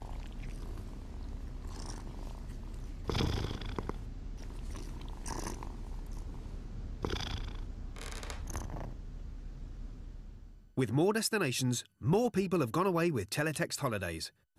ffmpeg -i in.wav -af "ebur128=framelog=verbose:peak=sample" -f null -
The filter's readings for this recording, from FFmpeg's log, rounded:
Integrated loudness:
  I:         -36.5 LUFS
  Threshold: -47.0 LUFS
Loudness range:
  LRA:        12.2 LU
  Threshold: -57.2 LUFS
  LRA low:   -44.1 LUFS
  LRA high:  -31.8 LUFS
Sample peak:
  Peak:      -18.5 dBFS